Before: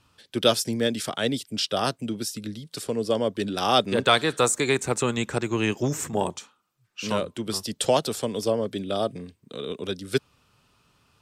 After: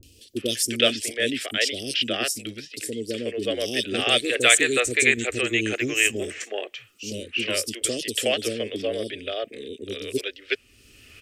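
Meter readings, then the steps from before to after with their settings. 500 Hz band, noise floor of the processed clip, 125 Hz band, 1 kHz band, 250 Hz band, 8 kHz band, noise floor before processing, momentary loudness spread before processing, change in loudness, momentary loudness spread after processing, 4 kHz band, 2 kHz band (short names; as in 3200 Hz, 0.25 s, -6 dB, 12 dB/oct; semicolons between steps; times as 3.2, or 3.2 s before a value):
-1.5 dB, -55 dBFS, -6.5 dB, -7.5 dB, -2.0 dB, +5.5 dB, -68 dBFS, 13 LU, +2.0 dB, 15 LU, +4.0 dB, +8.5 dB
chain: upward compressor, threshold -36 dBFS; band shelf 2300 Hz +10.5 dB 1 oct; fixed phaser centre 390 Hz, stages 4; three bands offset in time lows, highs, mids 30/370 ms, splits 430/4100 Hz; dynamic EQ 8400 Hz, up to +4 dB, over -41 dBFS, Q 1; gain +2.5 dB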